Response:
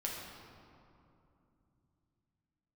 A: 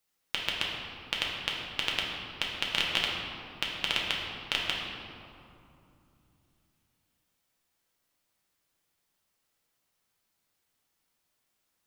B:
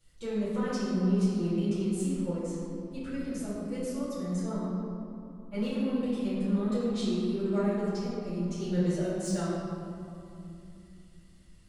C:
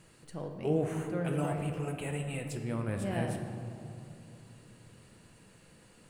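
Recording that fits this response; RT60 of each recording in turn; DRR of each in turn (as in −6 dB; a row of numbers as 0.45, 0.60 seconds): A; 2.8, 2.8, 2.7 seconds; −3.5, −13.0, 3.5 decibels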